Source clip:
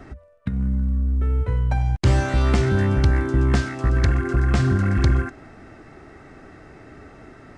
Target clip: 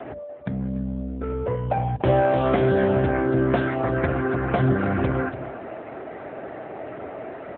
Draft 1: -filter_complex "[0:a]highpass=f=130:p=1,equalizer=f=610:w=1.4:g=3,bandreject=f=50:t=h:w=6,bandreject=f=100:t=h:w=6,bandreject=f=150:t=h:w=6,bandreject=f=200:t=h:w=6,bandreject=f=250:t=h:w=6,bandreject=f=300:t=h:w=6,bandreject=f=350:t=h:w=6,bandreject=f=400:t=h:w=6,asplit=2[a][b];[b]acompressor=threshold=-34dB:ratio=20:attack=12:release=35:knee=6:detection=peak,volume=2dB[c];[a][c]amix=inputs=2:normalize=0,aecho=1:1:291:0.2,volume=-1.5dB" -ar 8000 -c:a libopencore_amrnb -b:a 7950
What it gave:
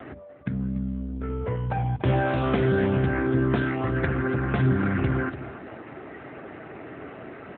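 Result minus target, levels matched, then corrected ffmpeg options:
500 Hz band -3.5 dB
-filter_complex "[0:a]highpass=f=130:p=1,equalizer=f=610:w=1.4:g=13,bandreject=f=50:t=h:w=6,bandreject=f=100:t=h:w=6,bandreject=f=150:t=h:w=6,bandreject=f=200:t=h:w=6,bandreject=f=250:t=h:w=6,bandreject=f=300:t=h:w=6,bandreject=f=350:t=h:w=6,bandreject=f=400:t=h:w=6,asplit=2[a][b];[b]acompressor=threshold=-34dB:ratio=20:attack=12:release=35:knee=6:detection=peak,volume=2dB[c];[a][c]amix=inputs=2:normalize=0,aecho=1:1:291:0.2,volume=-1.5dB" -ar 8000 -c:a libopencore_amrnb -b:a 7950

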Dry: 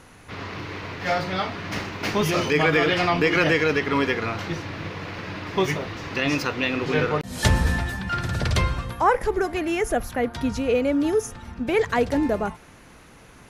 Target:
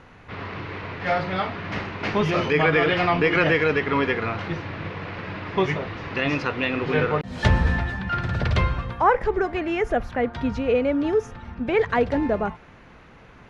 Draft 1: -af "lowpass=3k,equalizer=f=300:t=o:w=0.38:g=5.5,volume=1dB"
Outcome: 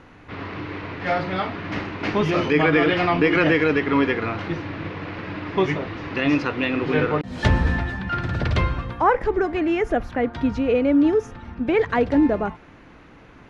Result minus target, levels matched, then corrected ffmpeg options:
250 Hz band +3.5 dB
-af "lowpass=3k,equalizer=f=300:t=o:w=0.38:g=-3,volume=1dB"

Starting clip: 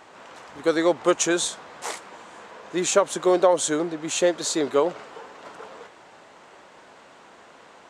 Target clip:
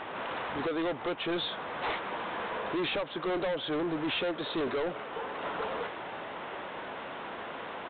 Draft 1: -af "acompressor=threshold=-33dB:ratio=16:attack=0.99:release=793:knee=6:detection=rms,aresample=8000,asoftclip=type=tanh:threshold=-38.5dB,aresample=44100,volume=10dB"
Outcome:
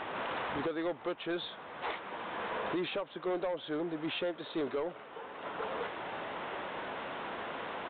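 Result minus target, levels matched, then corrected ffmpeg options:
compressor: peak gain reduction +10 dB
-af "acompressor=threshold=-22.5dB:ratio=16:attack=0.99:release=793:knee=6:detection=rms,aresample=8000,asoftclip=type=tanh:threshold=-38.5dB,aresample=44100,volume=10dB"

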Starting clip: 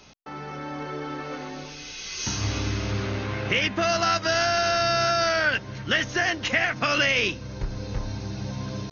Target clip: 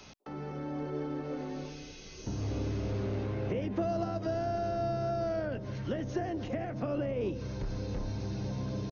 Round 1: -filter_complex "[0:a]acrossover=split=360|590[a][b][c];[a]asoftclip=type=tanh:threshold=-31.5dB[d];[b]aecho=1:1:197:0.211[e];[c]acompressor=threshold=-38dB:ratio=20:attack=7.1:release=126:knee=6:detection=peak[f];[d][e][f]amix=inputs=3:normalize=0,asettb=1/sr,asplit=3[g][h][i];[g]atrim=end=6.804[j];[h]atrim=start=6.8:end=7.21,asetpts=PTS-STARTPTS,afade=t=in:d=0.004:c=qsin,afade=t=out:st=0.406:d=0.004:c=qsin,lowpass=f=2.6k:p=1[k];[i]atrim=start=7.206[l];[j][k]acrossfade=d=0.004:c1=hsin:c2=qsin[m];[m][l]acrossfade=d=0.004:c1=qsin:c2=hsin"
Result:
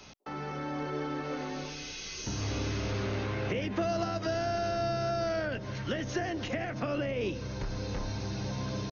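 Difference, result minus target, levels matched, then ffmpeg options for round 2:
compressor: peak gain reduction -11 dB
-filter_complex "[0:a]acrossover=split=360|590[a][b][c];[a]asoftclip=type=tanh:threshold=-31.5dB[d];[b]aecho=1:1:197:0.211[e];[c]acompressor=threshold=-49.5dB:ratio=20:attack=7.1:release=126:knee=6:detection=peak[f];[d][e][f]amix=inputs=3:normalize=0,asettb=1/sr,asplit=3[g][h][i];[g]atrim=end=6.804[j];[h]atrim=start=6.8:end=7.21,asetpts=PTS-STARTPTS,afade=t=in:d=0.004:c=qsin,afade=t=out:st=0.406:d=0.004:c=qsin,lowpass=f=2.6k:p=1[k];[i]atrim=start=7.206[l];[j][k]acrossfade=d=0.004:c1=hsin:c2=qsin[m];[m][l]acrossfade=d=0.004:c1=qsin:c2=hsin"

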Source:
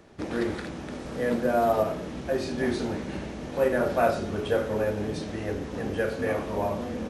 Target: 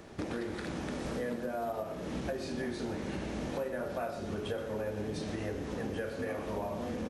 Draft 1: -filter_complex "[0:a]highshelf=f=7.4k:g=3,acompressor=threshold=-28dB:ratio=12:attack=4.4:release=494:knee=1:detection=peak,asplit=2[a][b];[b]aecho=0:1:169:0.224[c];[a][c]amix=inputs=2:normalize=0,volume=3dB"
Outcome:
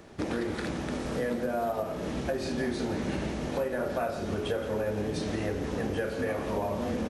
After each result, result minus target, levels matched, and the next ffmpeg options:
echo 46 ms late; compressor: peak gain reduction -5.5 dB
-filter_complex "[0:a]highshelf=f=7.4k:g=3,acompressor=threshold=-28dB:ratio=12:attack=4.4:release=494:knee=1:detection=peak,asplit=2[a][b];[b]aecho=0:1:123:0.224[c];[a][c]amix=inputs=2:normalize=0,volume=3dB"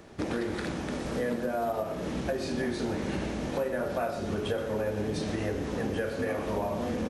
compressor: peak gain reduction -5.5 dB
-filter_complex "[0:a]highshelf=f=7.4k:g=3,acompressor=threshold=-34dB:ratio=12:attack=4.4:release=494:knee=1:detection=peak,asplit=2[a][b];[b]aecho=0:1:123:0.224[c];[a][c]amix=inputs=2:normalize=0,volume=3dB"

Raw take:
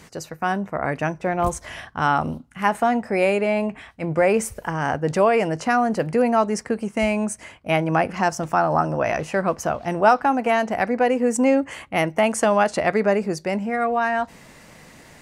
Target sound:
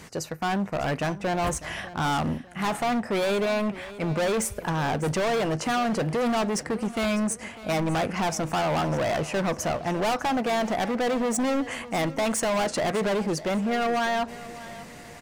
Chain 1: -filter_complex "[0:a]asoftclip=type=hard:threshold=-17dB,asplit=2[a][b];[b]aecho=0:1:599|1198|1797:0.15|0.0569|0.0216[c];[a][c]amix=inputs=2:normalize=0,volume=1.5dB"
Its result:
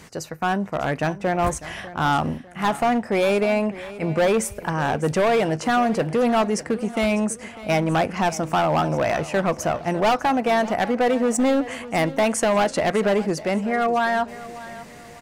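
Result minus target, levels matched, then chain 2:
hard clip: distortion -6 dB
-filter_complex "[0:a]asoftclip=type=hard:threshold=-24.5dB,asplit=2[a][b];[b]aecho=0:1:599|1198|1797:0.15|0.0569|0.0216[c];[a][c]amix=inputs=2:normalize=0,volume=1.5dB"

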